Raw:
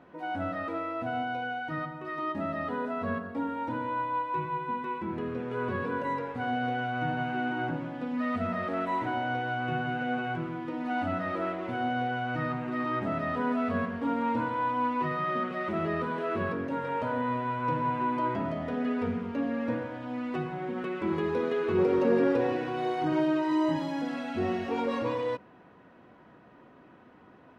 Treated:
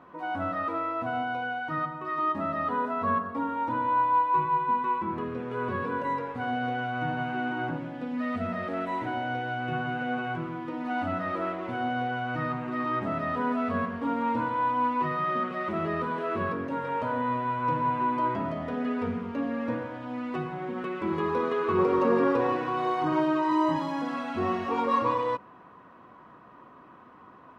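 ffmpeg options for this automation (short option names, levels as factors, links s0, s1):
-af "asetnsamples=n=441:p=0,asendcmd='5.24 equalizer g 4.5;7.78 equalizer g -3;9.73 equalizer g 5;21.2 equalizer g 14.5',equalizer=f=1100:t=o:w=0.4:g=13"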